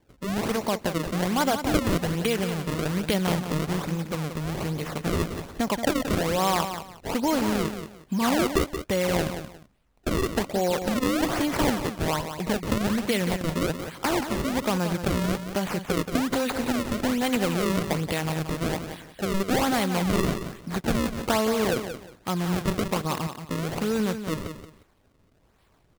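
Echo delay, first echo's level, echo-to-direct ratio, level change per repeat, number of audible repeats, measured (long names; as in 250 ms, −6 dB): 178 ms, −9.0 dB, −9.0 dB, −12.5 dB, 2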